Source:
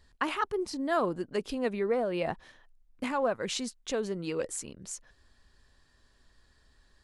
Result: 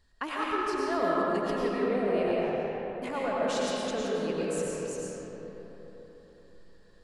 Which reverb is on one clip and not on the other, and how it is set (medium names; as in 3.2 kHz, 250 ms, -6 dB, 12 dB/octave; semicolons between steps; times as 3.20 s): algorithmic reverb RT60 4.2 s, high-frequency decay 0.45×, pre-delay 65 ms, DRR -6 dB; trim -5 dB